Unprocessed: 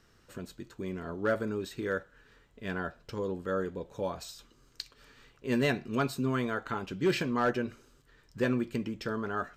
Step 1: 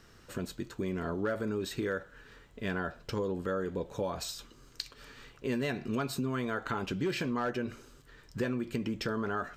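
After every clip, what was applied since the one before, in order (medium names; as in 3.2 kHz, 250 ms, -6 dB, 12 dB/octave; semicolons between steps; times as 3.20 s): in parallel at 0 dB: peak limiter -30.5 dBFS, peak gain reduction 10.5 dB; on the sum: compression 6:1, threshold -29 dBFS, peak gain reduction 9 dB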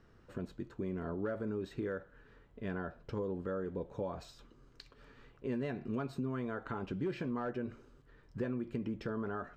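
low-pass 1 kHz 6 dB/octave; trim -3.5 dB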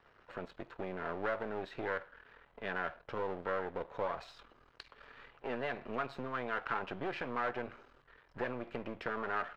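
partial rectifier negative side -12 dB; three-band isolator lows -16 dB, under 560 Hz, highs -19 dB, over 4 kHz; trim +10.5 dB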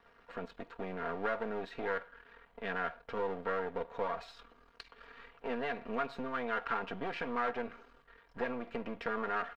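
comb 4.3 ms, depth 58%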